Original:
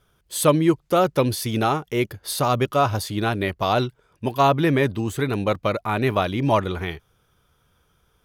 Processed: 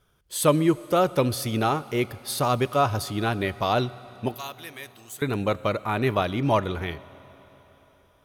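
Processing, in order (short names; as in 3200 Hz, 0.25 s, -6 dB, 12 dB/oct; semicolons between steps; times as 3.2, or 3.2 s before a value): 4.34–5.22 pre-emphasis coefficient 0.97; on a send: reverb RT60 4.2 s, pre-delay 6 ms, DRR 17 dB; on the sum: gain -2.5 dB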